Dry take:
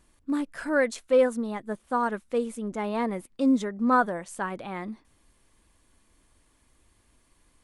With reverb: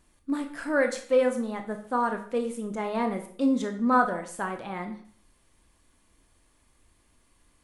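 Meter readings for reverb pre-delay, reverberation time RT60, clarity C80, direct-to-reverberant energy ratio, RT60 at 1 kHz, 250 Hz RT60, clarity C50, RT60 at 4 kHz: 19 ms, 0.50 s, 13.5 dB, 5.0 dB, 0.55 s, 0.50 s, 10.0 dB, 0.45 s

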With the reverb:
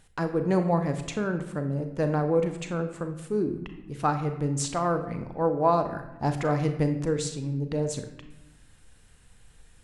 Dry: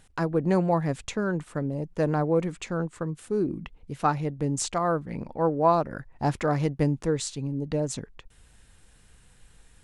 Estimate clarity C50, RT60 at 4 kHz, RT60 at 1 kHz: 9.0 dB, 0.70 s, 0.90 s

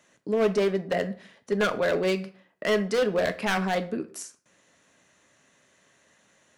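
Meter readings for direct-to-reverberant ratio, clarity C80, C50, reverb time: 8.5 dB, 20.0 dB, 15.5 dB, 0.45 s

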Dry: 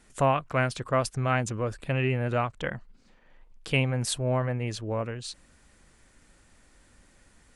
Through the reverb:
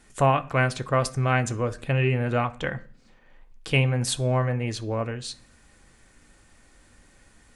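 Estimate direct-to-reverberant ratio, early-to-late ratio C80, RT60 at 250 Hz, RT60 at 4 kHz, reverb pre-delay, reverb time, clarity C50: 8.0 dB, 23.5 dB, 0.60 s, 0.55 s, 3 ms, 0.45 s, 19.5 dB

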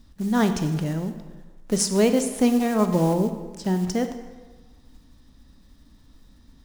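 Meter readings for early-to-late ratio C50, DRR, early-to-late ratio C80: 9.5 dB, 8.0 dB, 10.5 dB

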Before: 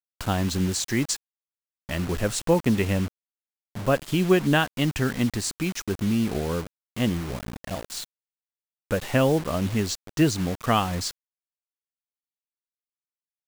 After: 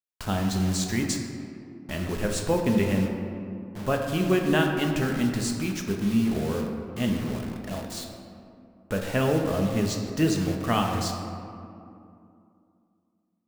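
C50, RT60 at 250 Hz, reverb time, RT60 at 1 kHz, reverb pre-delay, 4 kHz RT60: 4.0 dB, 3.4 s, 2.6 s, 2.5 s, 5 ms, 1.2 s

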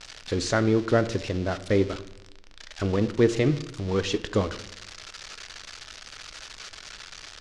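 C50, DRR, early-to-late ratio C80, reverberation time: 15.0 dB, 11.5 dB, 18.0 dB, 0.85 s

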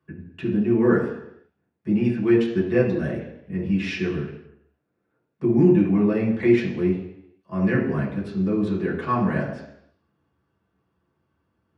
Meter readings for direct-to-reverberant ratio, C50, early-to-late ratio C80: −7.0 dB, 5.0 dB, 8.0 dB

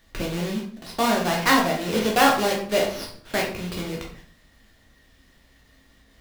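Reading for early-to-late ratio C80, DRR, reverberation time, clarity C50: 9.5 dB, −2.5 dB, 0.55 s, 5.0 dB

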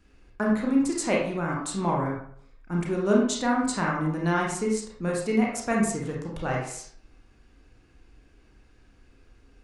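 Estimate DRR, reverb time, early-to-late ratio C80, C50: −3.0 dB, 0.60 s, 6.5 dB, 2.5 dB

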